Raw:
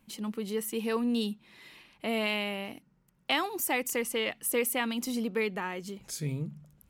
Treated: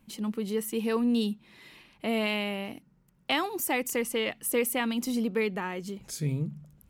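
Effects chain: low shelf 430 Hz +4.5 dB

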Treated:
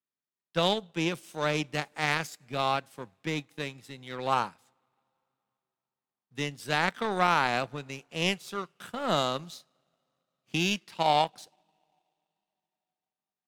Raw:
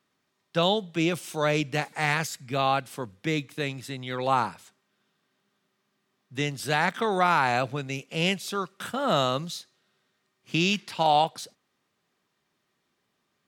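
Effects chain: two-slope reverb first 0.22 s, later 4.6 s, from -21 dB, DRR 18 dB; power-law curve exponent 1.4

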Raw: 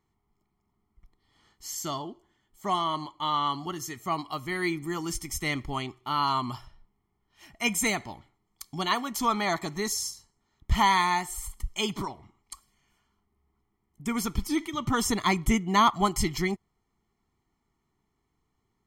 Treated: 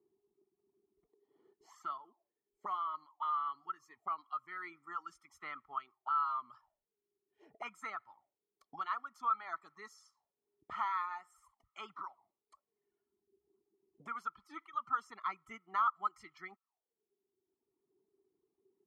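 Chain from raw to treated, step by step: reverb removal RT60 1.4 s; auto-wah 380–1300 Hz, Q 12, up, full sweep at -32.5 dBFS; three-band squash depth 40%; gain +3.5 dB

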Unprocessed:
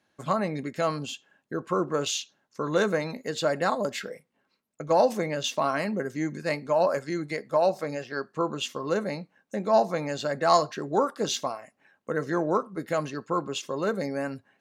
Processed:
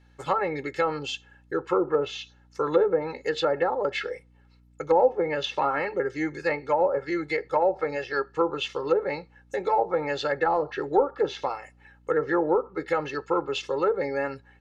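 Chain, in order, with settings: overdrive pedal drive 8 dB, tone 4300 Hz, clips at -7 dBFS; comb 2.3 ms, depth 100%; treble ducked by the level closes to 680 Hz, closed at -17 dBFS; hum 60 Hz, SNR 31 dB

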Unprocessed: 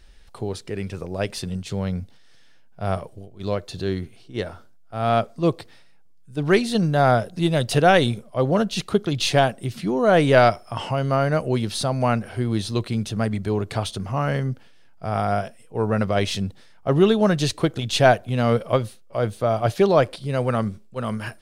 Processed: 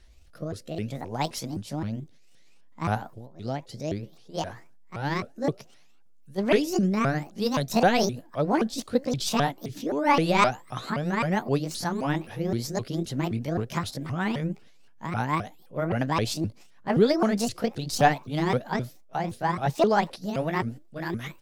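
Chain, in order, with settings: repeated pitch sweeps +9.5 st, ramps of 0.261 s; rotary speaker horn 0.6 Hz, later 6.3 Hz, at 7.21; gain -1.5 dB

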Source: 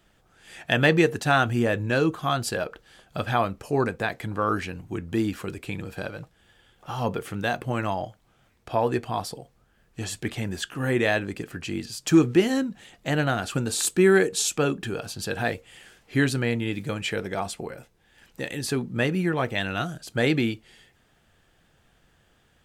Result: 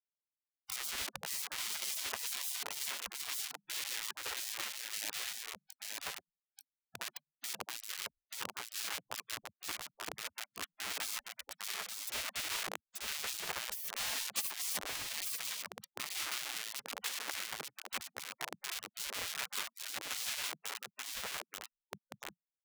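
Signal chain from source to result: high shelf 8600 Hz +2 dB; delay with a stepping band-pass 0.55 s, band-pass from 1200 Hz, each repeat 0.7 oct, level 0 dB; Schmitt trigger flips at -22 dBFS; notches 50/100/150/200 Hz; echo 0.885 s -3.5 dB; spectral gate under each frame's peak -25 dB weak

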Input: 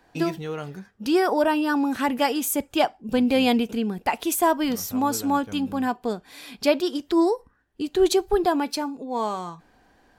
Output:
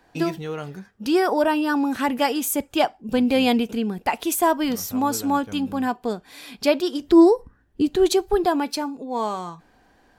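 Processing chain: 7.01–7.96 low shelf 390 Hz +11.5 dB; gain +1 dB

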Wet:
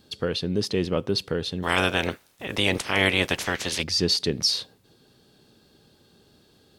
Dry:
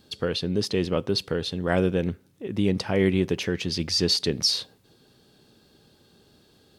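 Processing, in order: 1.62–3.82 spectral limiter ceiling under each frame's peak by 26 dB

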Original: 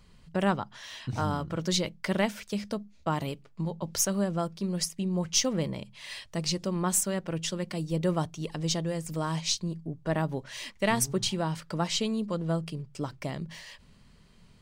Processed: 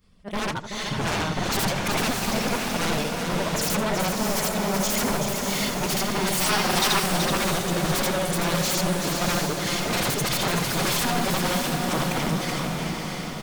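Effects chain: short-time reversal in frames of 0.19 s; reverb removal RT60 1 s; AGC gain up to 16 dB; wavefolder -21.5 dBFS; diffused feedback echo 0.701 s, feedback 50%, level -3 dB; spectral gain 6.98–7.66, 660–5500 Hz +6 dB; echo 0.412 s -6 dB; speed mistake 44.1 kHz file played as 48 kHz; warbling echo 82 ms, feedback 33%, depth 110 cents, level -14.5 dB

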